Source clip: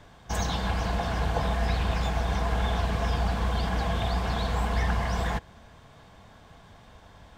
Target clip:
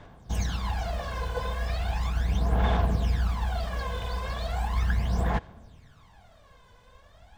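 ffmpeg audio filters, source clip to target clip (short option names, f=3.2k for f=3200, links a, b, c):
-af "acrusher=bits=8:mode=log:mix=0:aa=0.000001,aphaser=in_gain=1:out_gain=1:delay=2:decay=0.7:speed=0.37:type=sinusoidal,volume=-7dB"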